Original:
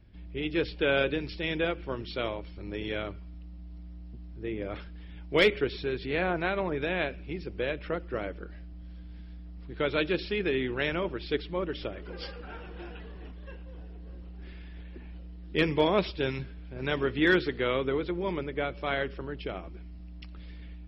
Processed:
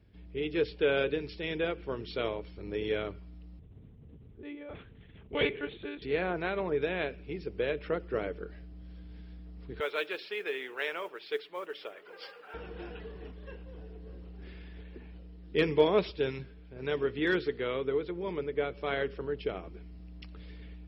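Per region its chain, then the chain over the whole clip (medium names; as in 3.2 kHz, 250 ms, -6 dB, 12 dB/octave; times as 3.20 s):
3.59–6.02 s: flange 1.4 Hz, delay 0.8 ms, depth 4.1 ms, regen -59% + monotone LPC vocoder at 8 kHz 290 Hz
9.80–12.54 s: high-pass 790 Hz + treble shelf 3.7 kHz -8.5 dB + modulation noise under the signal 28 dB
whole clip: high-pass 53 Hz; peaking EQ 440 Hz +10 dB 0.21 oct; gain riding within 4 dB 2 s; trim -5 dB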